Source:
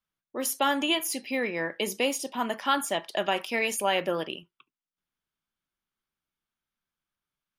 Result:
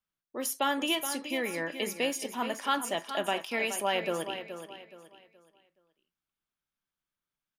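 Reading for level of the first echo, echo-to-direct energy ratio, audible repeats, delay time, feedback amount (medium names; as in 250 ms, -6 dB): -10.0 dB, -9.5 dB, 3, 423 ms, 32%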